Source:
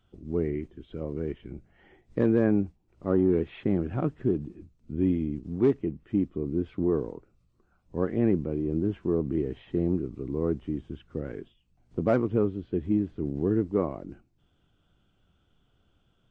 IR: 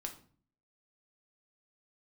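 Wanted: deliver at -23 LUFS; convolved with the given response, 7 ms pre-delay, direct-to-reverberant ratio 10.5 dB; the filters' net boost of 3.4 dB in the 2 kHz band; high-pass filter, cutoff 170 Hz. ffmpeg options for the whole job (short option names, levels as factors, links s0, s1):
-filter_complex "[0:a]highpass=170,equalizer=f=2000:t=o:g=4.5,asplit=2[s0][s1];[1:a]atrim=start_sample=2205,adelay=7[s2];[s1][s2]afir=irnorm=-1:irlink=0,volume=0.376[s3];[s0][s3]amix=inputs=2:normalize=0,volume=2"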